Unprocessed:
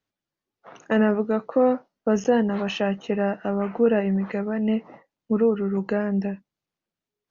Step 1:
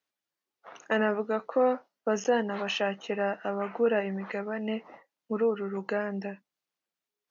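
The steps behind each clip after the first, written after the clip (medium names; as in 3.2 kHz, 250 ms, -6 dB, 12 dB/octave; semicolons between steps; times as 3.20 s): high-pass 710 Hz 6 dB/octave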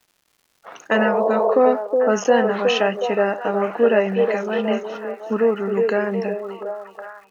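repeats whose band climbs or falls 366 ms, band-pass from 420 Hz, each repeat 0.7 oct, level -2 dB; crackle 260 per s -55 dBFS; spectral replace 0.97–1.52 s, 350–1100 Hz before; trim +8.5 dB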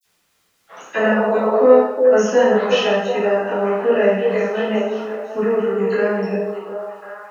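phase dispersion lows, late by 48 ms, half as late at 2.7 kHz; reverberation, pre-delay 6 ms, DRR -8.5 dB; trim -7.5 dB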